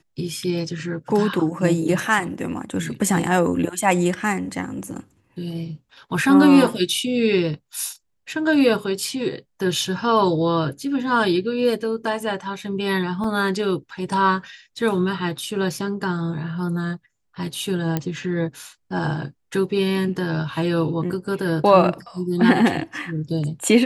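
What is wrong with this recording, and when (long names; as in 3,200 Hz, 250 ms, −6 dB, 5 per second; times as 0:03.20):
0:13.24: drop-out 3 ms
0:17.97: click −9 dBFS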